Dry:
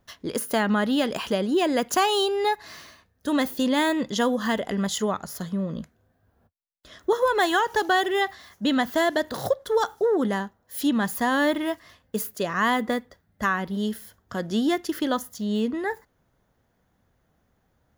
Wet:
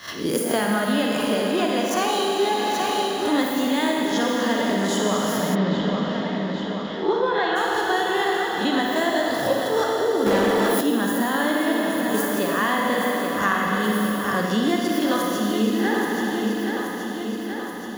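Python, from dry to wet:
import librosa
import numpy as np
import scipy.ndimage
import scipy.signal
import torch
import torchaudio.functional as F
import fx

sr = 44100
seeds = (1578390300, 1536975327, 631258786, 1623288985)

y = fx.spec_swells(x, sr, rise_s=0.31)
y = scipy.signal.sosfilt(scipy.signal.butter(2, 75.0, 'highpass', fs=sr, output='sos'), y)
y = fx.echo_feedback(y, sr, ms=827, feedback_pct=53, wet_db=-10)
y = fx.rev_schroeder(y, sr, rt60_s=2.9, comb_ms=38, drr_db=-1.5)
y = fx.rider(y, sr, range_db=5, speed_s=0.5)
y = fx.lowpass(y, sr, hz=4100.0, slope=24, at=(5.54, 7.55), fade=0.02)
y = fx.leveller(y, sr, passes=2, at=(10.26, 10.81))
y = fx.band_squash(y, sr, depth_pct=40)
y = y * librosa.db_to_amplitude(-2.0)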